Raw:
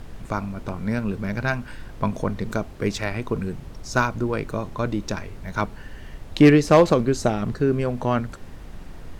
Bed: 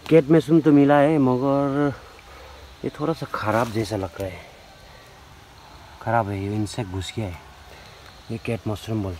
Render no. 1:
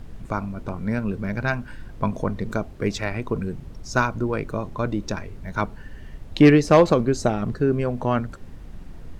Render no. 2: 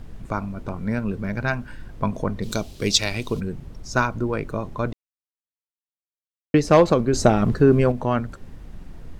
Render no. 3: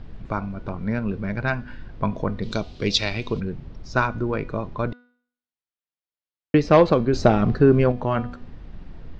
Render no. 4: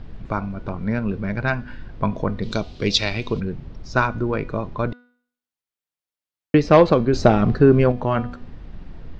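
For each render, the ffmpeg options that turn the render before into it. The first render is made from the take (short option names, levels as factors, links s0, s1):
-af "afftdn=nr=6:nf=-40"
-filter_complex "[0:a]asplit=3[s0][s1][s2];[s0]afade=t=out:st=2.42:d=0.02[s3];[s1]highshelf=f=2500:t=q:w=1.5:g=13.5,afade=t=in:st=2.42:d=0.02,afade=t=out:st=3.39:d=0.02[s4];[s2]afade=t=in:st=3.39:d=0.02[s5];[s3][s4][s5]amix=inputs=3:normalize=0,asettb=1/sr,asplit=3[s6][s7][s8];[s6]atrim=end=7.134[s9];[s7]atrim=start=7.13:end=7.92,asetpts=PTS-STARTPTS,afade=t=in:d=0.004:c=qsin,afade=t=out:st=0.786:d=0.004:c=qsin,acontrast=58[s10];[s8]atrim=start=7.916[s11];[s9][s10]acrossfade=d=0.004:c1=hsin:c2=qsin[s12];[s12][s11]acrossfade=d=0.004:c1=qsin:c2=hsin,asplit=3[s13][s14][s15];[s13]atrim=end=4.93,asetpts=PTS-STARTPTS,afade=t=out:st=4.926:d=0.004:c=hsin[s16];[s14]atrim=start=4.93:end=6.54,asetpts=PTS-STARTPTS,volume=0[s17];[s15]atrim=start=6.54,asetpts=PTS-STARTPTS,afade=t=in:d=0.004:c=hsin[s18];[s16][s17][s18]concat=n=3:v=0:a=1"
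-af "lowpass=f=4800:w=0.5412,lowpass=f=4800:w=1.3066,bandreject=f=244.8:t=h:w=4,bandreject=f=489.6:t=h:w=4,bandreject=f=734.4:t=h:w=4,bandreject=f=979.2:t=h:w=4,bandreject=f=1224:t=h:w=4,bandreject=f=1468.8:t=h:w=4,bandreject=f=1713.6:t=h:w=4,bandreject=f=1958.4:t=h:w=4,bandreject=f=2203.2:t=h:w=4,bandreject=f=2448:t=h:w=4,bandreject=f=2692.8:t=h:w=4,bandreject=f=2937.6:t=h:w=4,bandreject=f=3182.4:t=h:w=4,bandreject=f=3427.2:t=h:w=4,bandreject=f=3672:t=h:w=4,bandreject=f=3916.8:t=h:w=4,bandreject=f=4161.6:t=h:w=4,bandreject=f=4406.4:t=h:w=4,bandreject=f=4651.2:t=h:w=4,bandreject=f=4896:t=h:w=4,bandreject=f=5140.8:t=h:w=4,bandreject=f=5385.6:t=h:w=4,bandreject=f=5630.4:t=h:w=4,bandreject=f=5875.2:t=h:w=4,bandreject=f=6120:t=h:w=4,bandreject=f=6364.8:t=h:w=4,bandreject=f=6609.6:t=h:w=4,bandreject=f=6854.4:t=h:w=4,bandreject=f=7099.2:t=h:w=4,bandreject=f=7344:t=h:w=4,bandreject=f=7588.8:t=h:w=4,bandreject=f=7833.6:t=h:w=4,bandreject=f=8078.4:t=h:w=4,bandreject=f=8323.2:t=h:w=4"
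-af "volume=1.26"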